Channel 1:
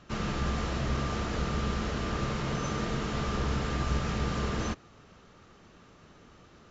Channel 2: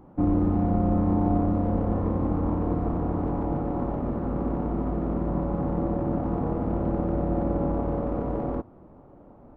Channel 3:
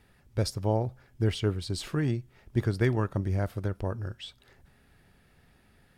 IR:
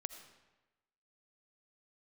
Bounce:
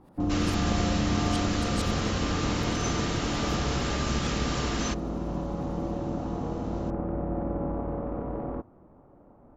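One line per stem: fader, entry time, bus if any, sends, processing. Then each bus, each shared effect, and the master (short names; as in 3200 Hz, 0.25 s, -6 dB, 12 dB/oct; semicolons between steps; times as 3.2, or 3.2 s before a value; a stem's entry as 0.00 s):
-1.0 dB, 0.20 s, no send, dry
-5.0 dB, 0.00 s, no send, LPF 1900 Hz 12 dB/oct
-6.0 dB, 0.00 s, no send, dB-ramp tremolo swelling 11 Hz, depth 20 dB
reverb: off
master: high shelf 2400 Hz +11 dB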